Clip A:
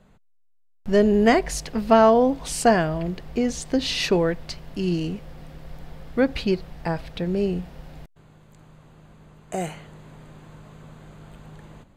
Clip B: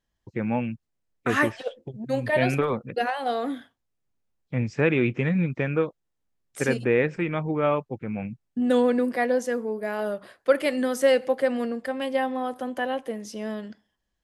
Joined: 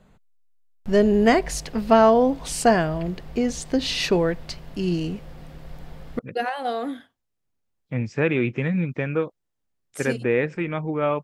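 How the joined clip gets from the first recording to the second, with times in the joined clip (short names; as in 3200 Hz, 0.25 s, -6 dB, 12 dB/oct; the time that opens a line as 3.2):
clip A
6.19 switch to clip B from 2.8 s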